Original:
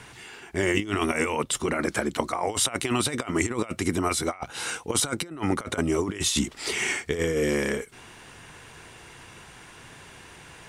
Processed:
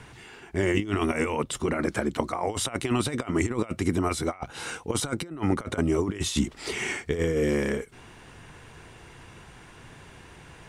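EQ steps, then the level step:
spectral tilt −1.5 dB per octave
−2.0 dB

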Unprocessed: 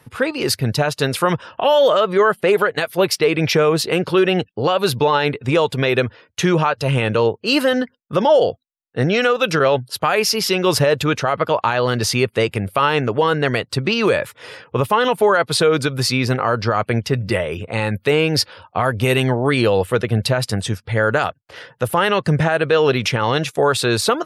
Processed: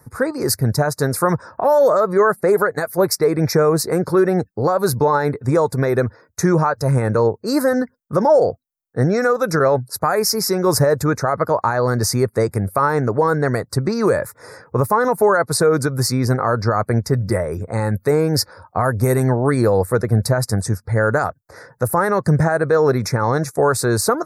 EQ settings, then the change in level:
Butterworth band-reject 3,000 Hz, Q 0.86
low-shelf EQ 76 Hz +9 dB
high-shelf EQ 11,000 Hz +10.5 dB
0.0 dB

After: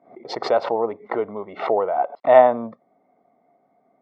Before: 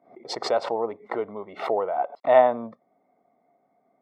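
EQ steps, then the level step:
high-frequency loss of the air 170 metres
+5.0 dB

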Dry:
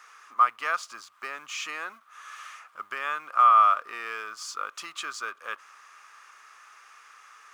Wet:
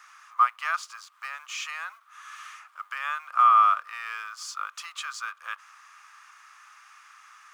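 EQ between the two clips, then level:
high-pass filter 820 Hz 24 dB per octave
0.0 dB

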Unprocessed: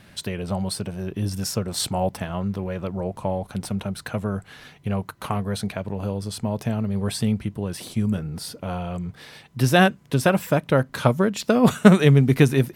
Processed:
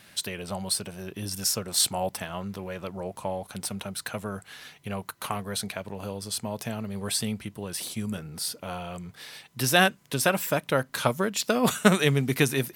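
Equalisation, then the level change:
spectral tilt +2.5 dB per octave
−3.0 dB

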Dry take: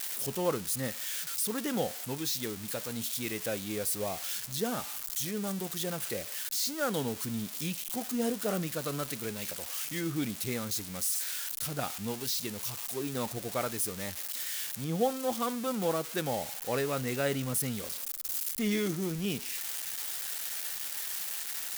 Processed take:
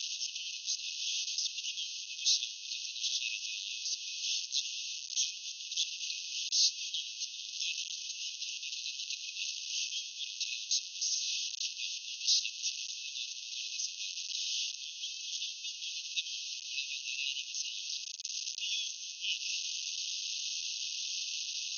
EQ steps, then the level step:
linear-phase brick-wall band-pass 2,500–6,600 Hz
+7.5 dB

